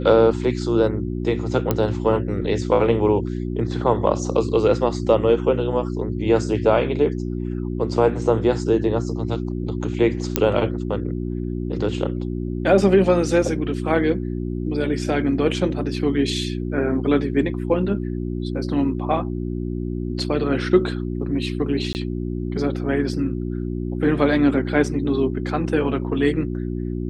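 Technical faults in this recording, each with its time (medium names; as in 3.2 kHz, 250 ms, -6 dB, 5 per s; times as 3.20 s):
hum 60 Hz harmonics 6 -26 dBFS
1.71 s: pop -6 dBFS
10.36 s: pop -1 dBFS
21.93–21.95 s: dropout 19 ms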